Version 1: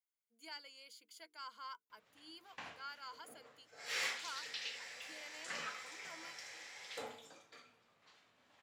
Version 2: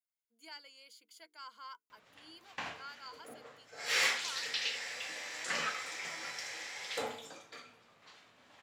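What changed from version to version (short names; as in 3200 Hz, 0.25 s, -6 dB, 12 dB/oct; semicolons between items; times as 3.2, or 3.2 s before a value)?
background +8.5 dB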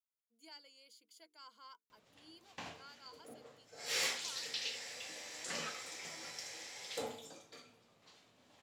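speech: add high shelf 8300 Hz -5.5 dB; master: add bell 1600 Hz -10 dB 2.1 oct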